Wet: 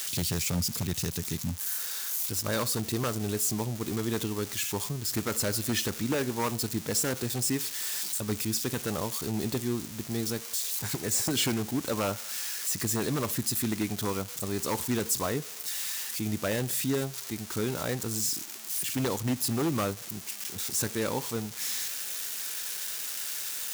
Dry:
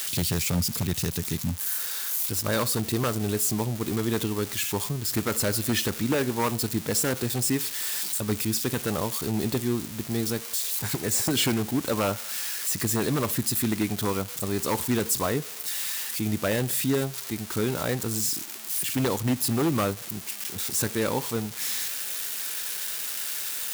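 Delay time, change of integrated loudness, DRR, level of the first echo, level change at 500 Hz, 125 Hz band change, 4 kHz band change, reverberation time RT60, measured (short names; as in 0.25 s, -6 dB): none, -3.5 dB, none, none, -4.0 dB, -4.0 dB, -2.5 dB, none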